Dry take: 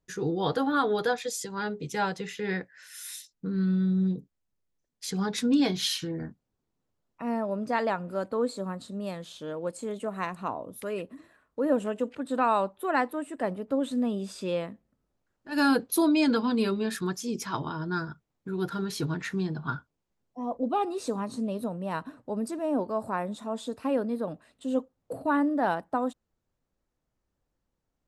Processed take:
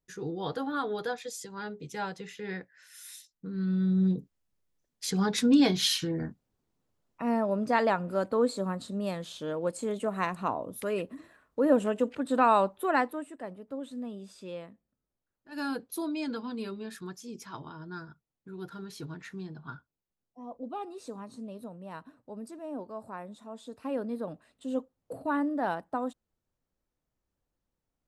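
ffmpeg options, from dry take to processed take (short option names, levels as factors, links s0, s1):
-af "volume=2.66,afade=t=in:st=3.52:d=0.64:silence=0.375837,afade=t=out:st=12.78:d=0.64:silence=0.237137,afade=t=in:st=23.62:d=0.48:silence=0.473151"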